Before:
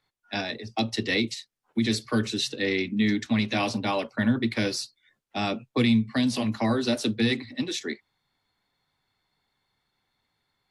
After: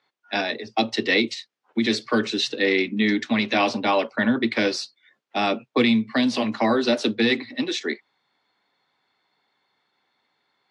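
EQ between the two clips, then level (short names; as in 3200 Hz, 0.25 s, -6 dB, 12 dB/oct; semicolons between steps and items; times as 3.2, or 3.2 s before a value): HPF 290 Hz 12 dB/oct; air absorption 95 m; high shelf 8800 Hz -5 dB; +7.5 dB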